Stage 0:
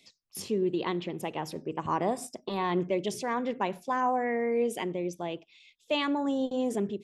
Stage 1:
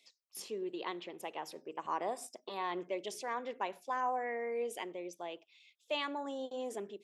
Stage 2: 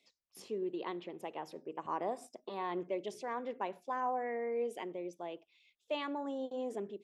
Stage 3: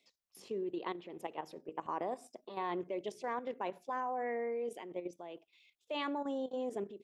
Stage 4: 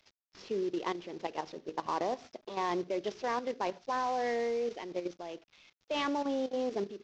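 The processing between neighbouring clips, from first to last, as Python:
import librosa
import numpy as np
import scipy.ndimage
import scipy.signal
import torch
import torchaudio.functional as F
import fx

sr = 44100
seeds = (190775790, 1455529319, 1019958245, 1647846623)

y1 = scipy.signal.sosfilt(scipy.signal.butter(2, 450.0, 'highpass', fs=sr, output='sos'), x)
y1 = y1 * 10.0 ** (-6.0 / 20.0)
y2 = fx.tilt_eq(y1, sr, slope=-2.5)
y2 = y2 * 10.0 ** (-1.5 / 20.0)
y3 = fx.level_steps(y2, sr, step_db=10)
y3 = y3 * 10.0 ** (3.5 / 20.0)
y4 = fx.cvsd(y3, sr, bps=32000)
y4 = y4 * 10.0 ** (5.0 / 20.0)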